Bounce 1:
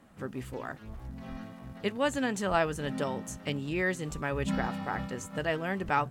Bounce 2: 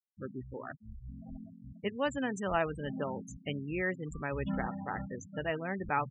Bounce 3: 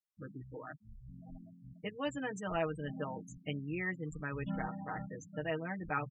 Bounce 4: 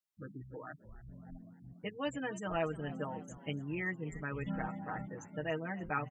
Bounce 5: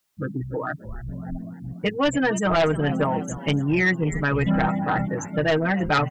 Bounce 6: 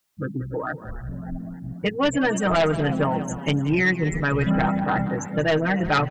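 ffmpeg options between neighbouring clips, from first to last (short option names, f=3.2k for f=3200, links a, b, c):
-af "afftfilt=real='re*gte(hypot(re,im),0.0251)':imag='im*gte(hypot(re,im),0.0251)':win_size=1024:overlap=0.75,volume=-3.5dB"
-af "aecho=1:1:6.4:0.89,volume=-6dB"
-filter_complex "[0:a]asplit=6[a][b][c][d][e][f];[b]adelay=290,afreqshift=53,volume=-18dB[g];[c]adelay=580,afreqshift=106,volume=-23dB[h];[d]adelay=870,afreqshift=159,volume=-28.1dB[i];[e]adelay=1160,afreqshift=212,volume=-33.1dB[j];[f]adelay=1450,afreqshift=265,volume=-38.1dB[k];[a][g][h][i][j][k]amix=inputs=6:normalize=0"
-af "aeval=exprs='0.0794*sin(PI/2*2.24*val(0)/0.0794)':c=same,volume=7.5dB"
-af "aecho=1:1:183|366|549:0.188|0.0697|0.0258"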